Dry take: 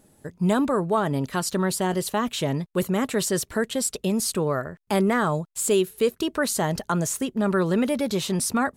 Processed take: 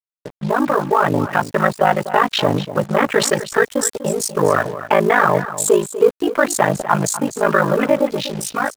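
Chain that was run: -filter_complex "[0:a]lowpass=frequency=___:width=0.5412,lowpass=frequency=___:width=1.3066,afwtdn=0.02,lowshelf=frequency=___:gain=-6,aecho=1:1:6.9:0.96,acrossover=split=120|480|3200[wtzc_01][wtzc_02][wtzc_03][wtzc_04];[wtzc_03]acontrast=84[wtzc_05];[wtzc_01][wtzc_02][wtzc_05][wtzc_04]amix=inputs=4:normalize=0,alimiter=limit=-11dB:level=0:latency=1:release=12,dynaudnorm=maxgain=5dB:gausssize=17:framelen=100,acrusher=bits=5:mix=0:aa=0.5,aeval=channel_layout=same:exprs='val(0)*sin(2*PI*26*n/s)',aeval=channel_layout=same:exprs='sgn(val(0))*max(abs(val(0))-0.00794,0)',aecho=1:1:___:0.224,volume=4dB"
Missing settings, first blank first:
9600, 9600, 410, 246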